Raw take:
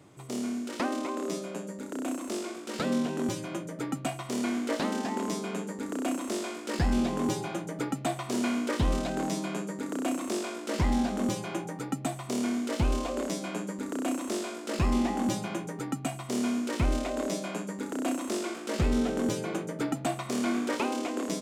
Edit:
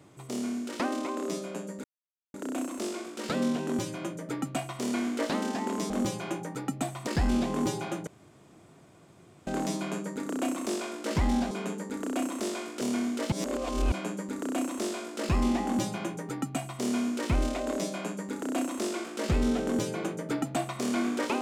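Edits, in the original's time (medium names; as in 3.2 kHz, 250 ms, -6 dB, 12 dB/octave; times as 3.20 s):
1.84 s: insert silence 0.50 s
5.40–6.70 s: swap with 11.14–12.31 s
7.70–9.10 s: room tone
12.82–13.42 s: reverse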